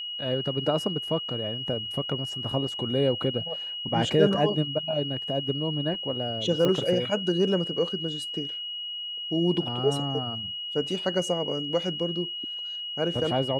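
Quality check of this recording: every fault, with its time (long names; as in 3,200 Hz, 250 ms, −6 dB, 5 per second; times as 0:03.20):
whistle 2,900 Hz −32 dBFS
0:06.65: click −13 dBFS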